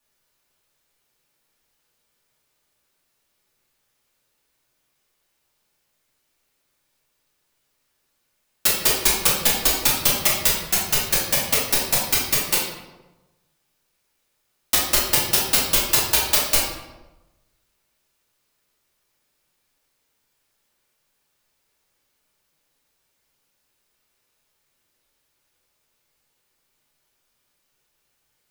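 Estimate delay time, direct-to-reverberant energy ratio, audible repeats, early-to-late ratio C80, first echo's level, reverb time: no echo, -6.5 dB, no echo, 5.0 dB, no echo, 1.1 s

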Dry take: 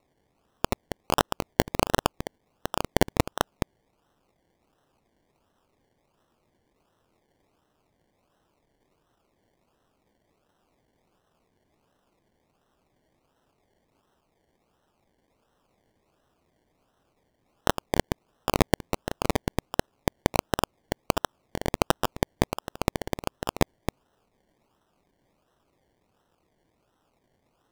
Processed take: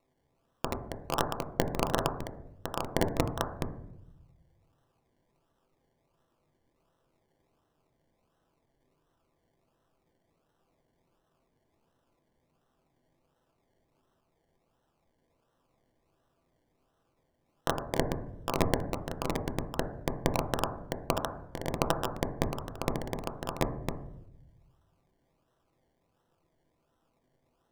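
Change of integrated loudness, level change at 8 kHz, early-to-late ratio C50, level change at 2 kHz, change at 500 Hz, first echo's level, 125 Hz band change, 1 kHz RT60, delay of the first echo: -4.5 dB, -6.5 dB, 11.0 dB, -6.0 dB, -4.0 dB, no echo, -3.0 dB, 0.65 s, no echo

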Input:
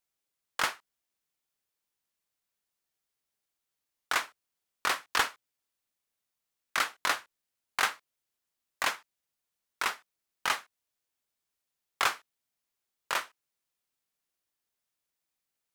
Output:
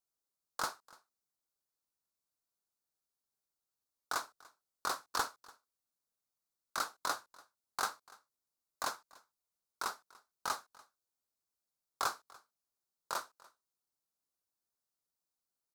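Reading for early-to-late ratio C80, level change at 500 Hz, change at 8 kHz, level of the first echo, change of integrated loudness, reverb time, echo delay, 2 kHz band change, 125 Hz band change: no reverb, -5.0 dB, -5.0 dB, -23.5 dB, -8.0 dB, no reverb, 291 ms, -11.5 dB, -5.0 dB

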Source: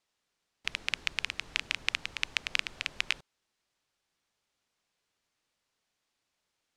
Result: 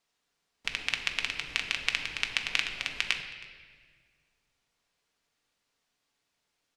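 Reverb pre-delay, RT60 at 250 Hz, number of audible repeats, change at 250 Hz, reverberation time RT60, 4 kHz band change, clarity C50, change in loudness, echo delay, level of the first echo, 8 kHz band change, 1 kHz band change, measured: 4 ms, 2.2 s, 1, +2.5 dB, 1.7 s, +2.5 dB, 7.5 dB, +2.5 dB, 319 ms, -21.5 dB, +2.0 dB, +2.5 dB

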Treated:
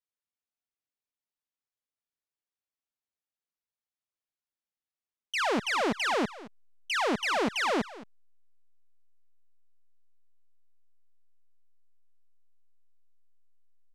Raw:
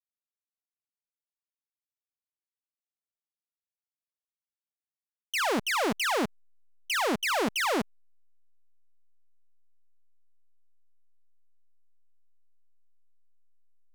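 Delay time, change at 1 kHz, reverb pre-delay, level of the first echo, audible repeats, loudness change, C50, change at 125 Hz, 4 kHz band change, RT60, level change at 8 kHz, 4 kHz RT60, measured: 219 ms, 0.0 dB, no reverb, -18.0 dB, 1, -0.5 dB, no reverb, 0.0 dB, -1.5 dB, no reverb, -5.0 dB, no reverb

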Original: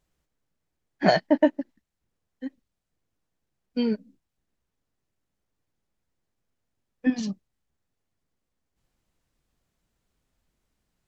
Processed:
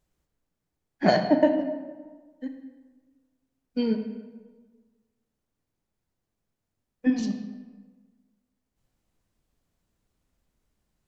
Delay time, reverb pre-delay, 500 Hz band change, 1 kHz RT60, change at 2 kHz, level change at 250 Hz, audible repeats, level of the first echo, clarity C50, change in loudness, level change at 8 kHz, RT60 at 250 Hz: no echo, 29 ms, +0.5 dB, 1.4 s, -2.0 dB, +0.5 dB, no echo, no echo, 7.5 dB, -1.0 dB, no reading, 1.5 s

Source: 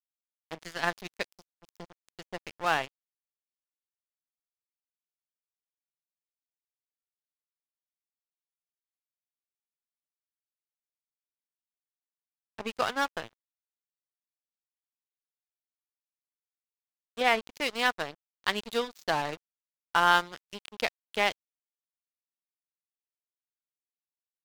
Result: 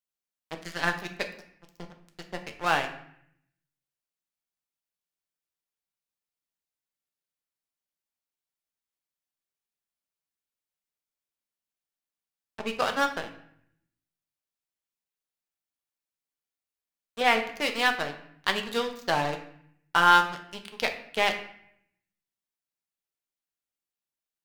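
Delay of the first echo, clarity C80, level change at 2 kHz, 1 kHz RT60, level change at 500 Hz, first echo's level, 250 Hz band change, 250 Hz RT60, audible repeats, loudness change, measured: no echo, 13.0 dB, +3.0 dB, 0.65 s, +2.0 dB, no echo, +3.5 dB, 0.90 s, no echo, +3.0 dB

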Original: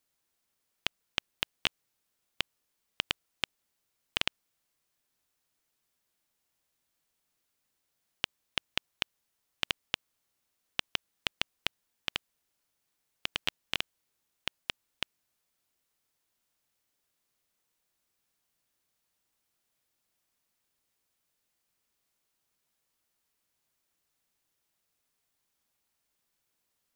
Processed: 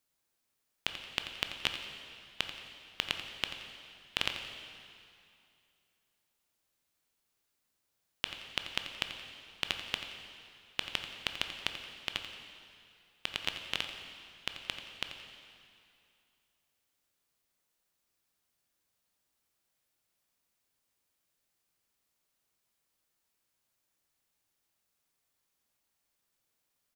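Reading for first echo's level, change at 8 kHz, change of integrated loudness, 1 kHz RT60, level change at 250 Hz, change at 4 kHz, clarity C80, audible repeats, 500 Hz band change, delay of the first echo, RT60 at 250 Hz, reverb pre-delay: -12.0 dB, -1.0 dB, -1.5 dB, 2.5 s, -1.0 dB, -1.0 dB, 6.0 dB, 1, -0.5 dB, 87 ms, 2.5 s, 7 ms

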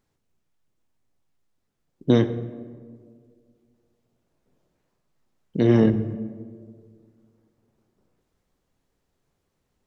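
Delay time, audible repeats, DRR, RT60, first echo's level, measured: no echo, no echo, 10.0 dB, 1.9 s, no echo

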